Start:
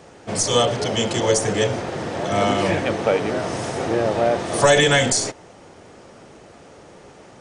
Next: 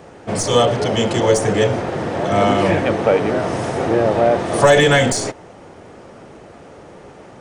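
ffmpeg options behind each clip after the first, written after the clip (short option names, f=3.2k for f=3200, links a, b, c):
-af "acontrast=29,equalizer=f=6.2k:t=o:w=2.2:g=-7.5"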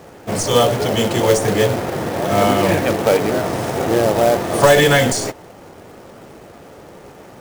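-af "acrusher=bits=3:mode=log:mix=0:aa=0.000001"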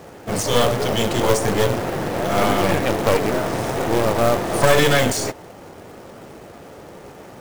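-af "aeval=exprs='clip(val(0),-1,0.0631)':c=same"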